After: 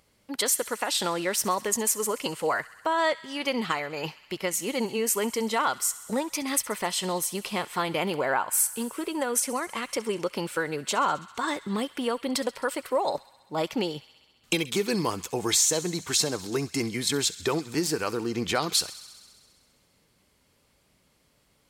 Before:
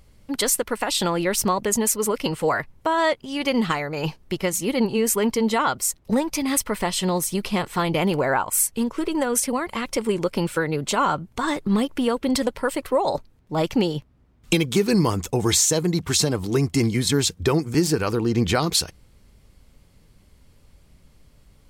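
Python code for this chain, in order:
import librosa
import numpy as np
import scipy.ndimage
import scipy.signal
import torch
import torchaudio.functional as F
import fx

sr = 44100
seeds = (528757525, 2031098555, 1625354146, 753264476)

y = fx.highpass(x, sr, hz=410.0, slope=6)
y = fx.echo_wet_highpass(y, sr, ms=66, feedback_pct=77, hz=1600.0, wet_db=-17.5)
y = y * librosa.db_to_amplitude(-3.0)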